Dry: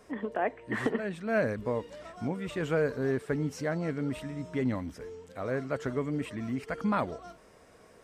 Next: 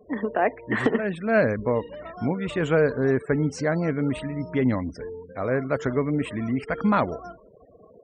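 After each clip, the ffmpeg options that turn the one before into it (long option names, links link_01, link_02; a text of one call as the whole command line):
ffmpeg -i in.wav -af "afftfilt=real='re*gte(hypot(re,im),0.00398)':imag='im*gte(hypot(re,im),0.00398)':win_size=1024:overlap=0.75,volume=7.5dB" out.wav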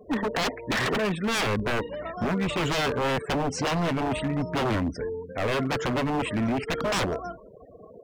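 ffmpeg -i in.wav -af "aeval=exprs='0.0596*(abs(mod(val(0)/0.0596+3,4)-2)-1)':channel_layout=same,volume=4dB" out.wav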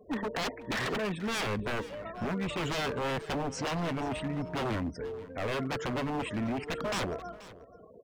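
ffmpeg -i in.wav -af "aecho=1:1:482:0.126,volume=-6.5dB" out.wav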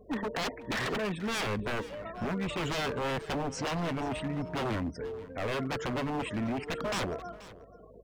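ffmpeg -i in.wav -af "aeval=exprs='val(0)+0.001*(sin(2*PI*50*n/s)+sin(2*PI*2*50*n/s)/2+sin(2*PI*3*50*n/s)/3+sin(2*PI*4*50*n/s)/4+sin(2*PI*5*50*n/s)/5)':channel_layout=same" out.wav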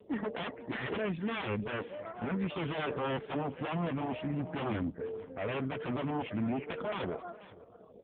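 ffmpeg -i in.wav -ar 8000 -c:a libopencore_amrnb -b:a 5150 out.amr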